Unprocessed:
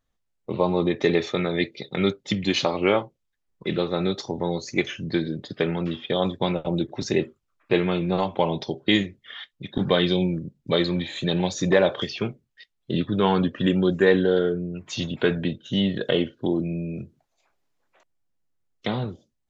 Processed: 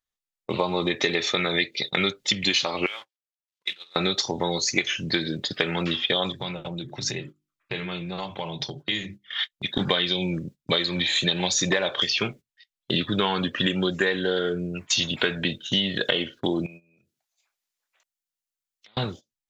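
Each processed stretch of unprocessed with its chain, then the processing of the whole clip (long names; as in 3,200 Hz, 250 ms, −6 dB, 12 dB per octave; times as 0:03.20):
0:02.86–0:03.96: mu-law and A-law mismatch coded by A + downward compressor 12 to 1, threshold −24 dBFS + resonant band-pass 3,600 Hz, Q 1
0:06.32–0:09.39: parametric band 130 Hz +14 dB 0.64 octaves + mains-hum notches 50/100/150/200/250/300/350 Hz + downward compressor 3 to 1, threshold −36 dBFS
0:16.66–0:18.97: spectral tilt +2 dB per octave + downward compressor 8 to 1, threshold −44 dBFS
whole clip: noise gate −40 dBFS, range −19 dB; tilt shelving filter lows −8 dB, about 1,100 Hz; downward compressor 10 to 1, threshold −27 dBFS; level +7.5 dB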